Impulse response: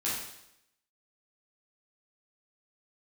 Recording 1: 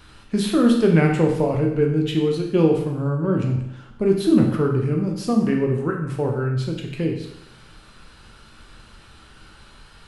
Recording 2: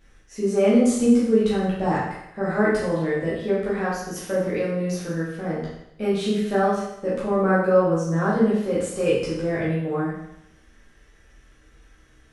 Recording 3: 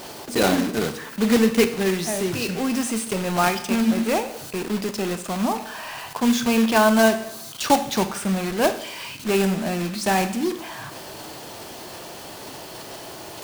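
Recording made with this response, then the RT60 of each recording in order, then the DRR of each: 2; 0.80 s, 0.80 s, 0.80 s; 0.5 dB, -8.5 dB, 8.5 dB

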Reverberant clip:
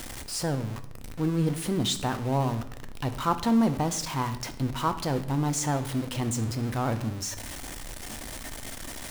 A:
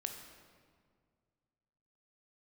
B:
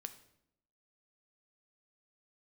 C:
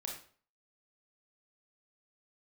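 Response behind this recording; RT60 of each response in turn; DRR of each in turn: B; 2.0 s, 0.75 s, 0.45 s; 4.0 dB, 8.5 dB, -1.0 dB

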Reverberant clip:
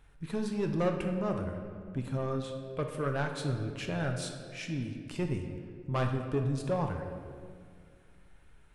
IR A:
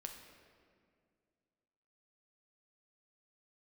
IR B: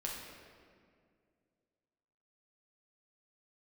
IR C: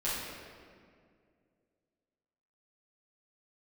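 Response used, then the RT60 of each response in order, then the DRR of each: A; 2.1 s, 2.2 s, 2.2 s; 3.0 dB, -3.5 dB, -11.5 dB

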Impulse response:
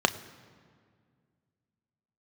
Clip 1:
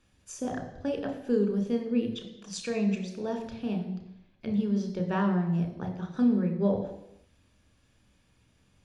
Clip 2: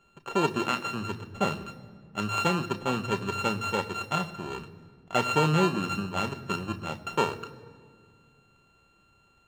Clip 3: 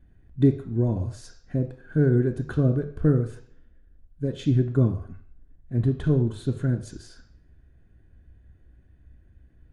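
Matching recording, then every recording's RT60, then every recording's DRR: 2; 0.85 s, 2.0 s, 0.55 s; 3.5 dB, 9.5 dB, 6.0 dB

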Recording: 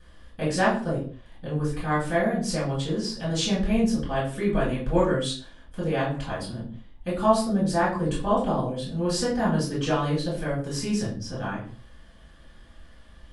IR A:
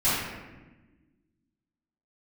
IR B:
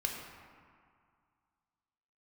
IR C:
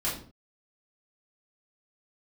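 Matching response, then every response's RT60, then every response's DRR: C; 1.2 s, 2.1 s, 0.45 s; -14.5 dB, 0.5 dB, -8.0 dB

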